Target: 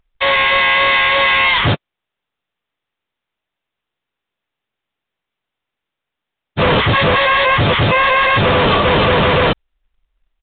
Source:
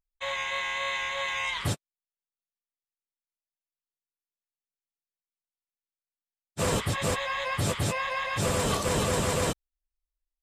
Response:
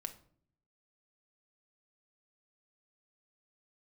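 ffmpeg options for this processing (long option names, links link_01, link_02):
-af "acrusher=bits=3:mode=log:mix=0:aa=0.000001,apsyclip=29.5dB,aresample=8000,aresample=44100,volume=-8dB"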